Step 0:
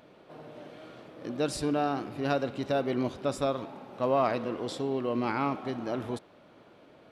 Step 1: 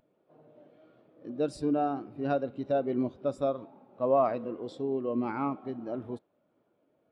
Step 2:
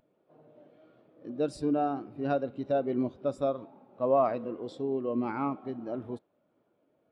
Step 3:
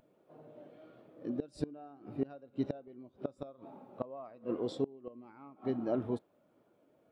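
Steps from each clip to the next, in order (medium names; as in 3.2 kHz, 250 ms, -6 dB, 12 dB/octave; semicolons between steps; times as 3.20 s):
spectral contrast expander 1.5:1
no audible change
inverted gate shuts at -24 dBFS, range -25 dB; trim +3 dB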